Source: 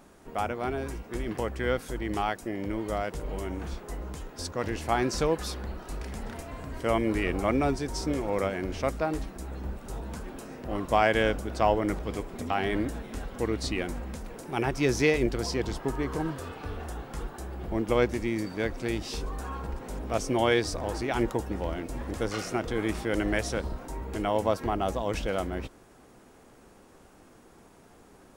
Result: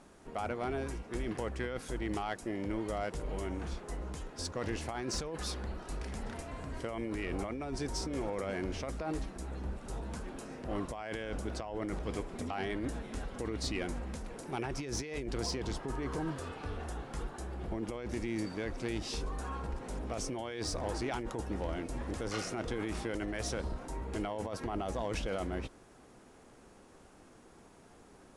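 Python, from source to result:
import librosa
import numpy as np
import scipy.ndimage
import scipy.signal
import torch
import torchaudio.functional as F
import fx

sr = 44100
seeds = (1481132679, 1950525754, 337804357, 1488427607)

y = scipy.signal.sosfilt(scipy.signal.ellip(4, 1.0, 40, 11000.0, 'lowpass', fs=sr, output='sos'), x)
y = fx.over_compress(y, sr, threshold_db=-31.0, ratio=-1.0)
y = 10.0 ** (-20.0 / 20.0) * np.tanh(y / 10.0 ** (-20.0 / 20.0))
y = y * librosa.db_to_amplitude(-4.0)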